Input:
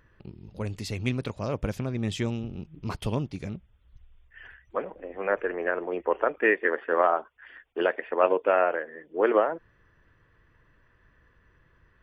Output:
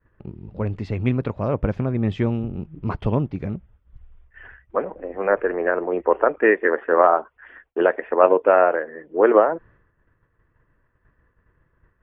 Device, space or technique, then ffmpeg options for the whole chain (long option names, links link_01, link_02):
hearing-loss simulation: -af "lowpass=1600,agate=range=-33dB:threshold=-54dB:ratio=3:detection=peak,volume=7.5dB"